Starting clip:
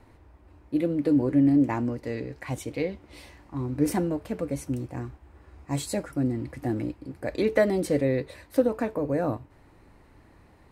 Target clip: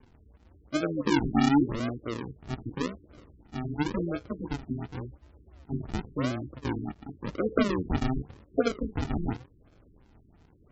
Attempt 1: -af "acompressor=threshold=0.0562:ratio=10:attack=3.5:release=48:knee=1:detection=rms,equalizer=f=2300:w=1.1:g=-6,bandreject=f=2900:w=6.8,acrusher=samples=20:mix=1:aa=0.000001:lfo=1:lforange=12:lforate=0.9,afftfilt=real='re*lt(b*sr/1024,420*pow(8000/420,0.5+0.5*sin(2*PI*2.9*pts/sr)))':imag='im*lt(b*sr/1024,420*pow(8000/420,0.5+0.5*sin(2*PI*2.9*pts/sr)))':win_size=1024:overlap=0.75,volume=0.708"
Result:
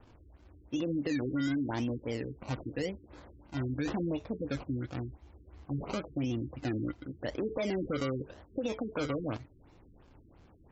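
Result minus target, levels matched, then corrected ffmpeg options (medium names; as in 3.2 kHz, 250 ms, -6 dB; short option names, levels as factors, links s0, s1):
decimation with a swept rate: distortion -19 dB; compression: peak gain reduction +12.5 dB
-af "equalizer=f=2300:w=1.1:g=-6,bandreject=f=2900:w=6.8,acrusher=samples=66:mix=1:aa=0.000001:lfo=1:lforange=39.6:lforate=0.9,afftfilt=real='re*lt(b*sr/1024,420*pow(8000/420,0.5+0.5*sin(2*PI*2.9*pts/sr)))':imag='im*lt(b*sr/1024,420*pow(8000/420,0.5+0.5*sin(2*PI*2.9*pts/sr)))':win_size=1024:overlap=0.75,volume=0.708"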